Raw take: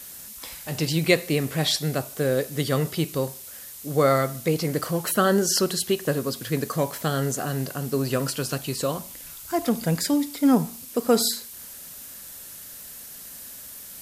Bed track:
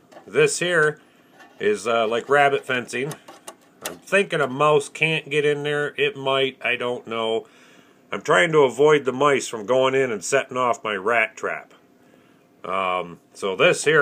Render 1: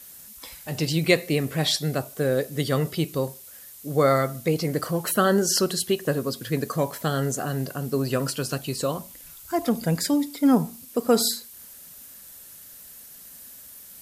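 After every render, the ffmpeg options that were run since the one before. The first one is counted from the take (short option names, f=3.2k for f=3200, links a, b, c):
-af "afftdn=nr=6:nf=-41"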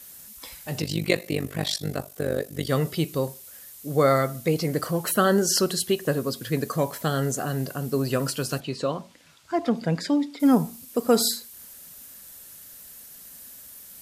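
-filter_complex "[0:a]asplit=3[a][b][c];[a]afade=t=out:st=0.8:d=0.02[d];[b]tremolo=f=49:d=0.889,afade=t=in:st=0.8:d=0.02,afade=t=out:st=2.68:d=0.02[e];[c]afade=t=in:st=2.68:d=0.02[f];[d][e][f]amix=inputs=3:normalize=0,asettb=1/sr,asplit=3[g][h][i];[g]atrim=end=8.604[j];[h]atrim=start=8.6:end=10.4,asetpts=PTS-STARTPTS,afade=t=in:d=0.004:c=qsin,afade=t=out:st=1.796:d=0.004:c=qsin,highpass=130,lowpass=4.2k[k];[i]atrim=start=10.396[l];[j][k]acrossfade=d=0.004:c1=hsin:c2=qsin[m];[m][l]acrossfade=d=0.004:c1=qsin:c2=hsin"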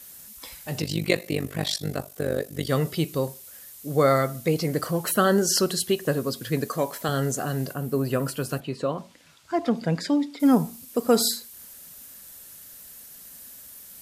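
-filter_complex "[0:a]asettb=1/sr,asplit=3[a][b][c];[a]atrim=end=6.664[d];[b]atrim=start=6.66:end=7.09,asetpts=PTS-STARTPTS,afade=t=in:d=0.004:c=qsin,afade=t=out:st=0.426:d=0.004:c=qsin,equalizer=f=110:t=o:w=1.1:g=-11[e];[c]atrim=start=7.086[f];[d][e]acrossfade=d=0.004:c1=hsin:c2=qsin[g];[g][f]acrossfade=d=0.004:c1=qsin:c2=hsin,asettb=1/sr,asplit=3[h][i][j];[h]atrim=end=7.734[k];[i]atrim=start=7.73:end=8.98,asetpts=PTS-STARTPTS,afade=t=in:d=0.004:c=qsin,afade=t=out:st=1.246:d=0.004:c=qsin,equalizer=f=5.3k:w=0.79:g=-8[l];[j]atrim=start=8.976[m];[k][l]acrossfade=d=0.004:c1=hsin:c2=qsin[n];[n][m]acrossfade=d=0.004:c1=qsin:c2=hsin"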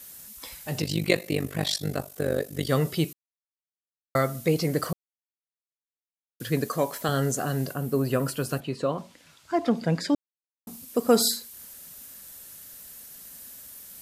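-filter_complex "[0:a]asplit=7[a][b][c][d][e][f][g];[a]atrim=end=3.13,asetpts=PTS-STARTPTS,afade=t=out:st=3.126:d=0.004:c=hsin[h];[b]atrim=start=3.13:end=4.15,asetpts=PTS-STARTPTS,volume=0[i];[c]atrim=start=4.15:end=4.93,asetpts=PTS-STARTPTS,afade=t=in:d=0.004:c=hsin,afade=t=out:st=0.776:d=0.004:c=hsin[j];[d]atrim=start=4.93:end=6.4,asetpts=PTS-STARTPTS,volume=0[k];[e]atrim=start=6.4:end=10.15,asetpts=PTS-STARTPTS,afade=t=in:d=0.004:c=hsin,afade=t=out:st=3.746:d=0.004:c=hsin[l];[f]atrim=start=10.15:end=10.67,asetpts=PTS-STARTPTS,volume=0[m];[g]atrim=start=10.67,asetpts=PTS-STARTPTS,afade=t=in:d=0.004:c=hsin[n];[h][i][j][k][l][m][n]concat=n=7:v=0:a=1"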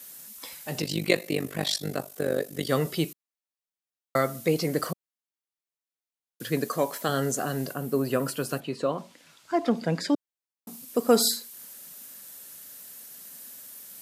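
-af "highpass=170"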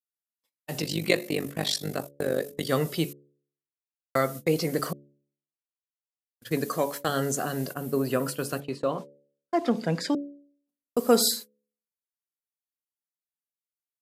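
-af "agate=range=-55dB:threshold=-35dB:ratio=16:detection=peak,bandreject=f=71.31:t=h:w=4,bandreject=f=142.62:t=h:w=4,bandreject=f=213.93:t=h:w=4,bandreject=f=285.24:t=h:w=4,bandreject=f=356.55:t=h:w=4,bandreject=f=427.86:t=h:w=4,bandreject=f=499.17:t=h:w=4,bandreject=f=570.48:t=h:w=4"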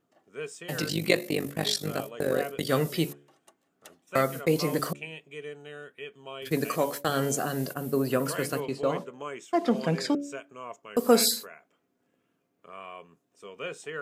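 -filter_complex "[1:a]volume=-20dB[a];[0:a][a]amix=inputs=2:normalize=0"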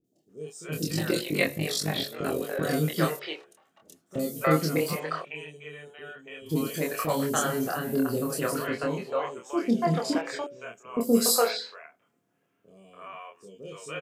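-filter_complex "[0:a]asplit=2[a][b];[b]adelay=26,volume=-2.5dB[c];[a][c]amix=inputs=2:normalize=0,acrossover=split=470|3900[d][e][f];[f]adelay=40[g];[e]adelay=290[h];[d][h][g]amix=inputs=3:normalize=0"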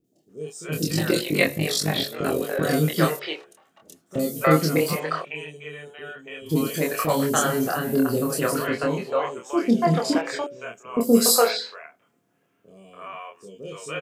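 -af "volume=5dB"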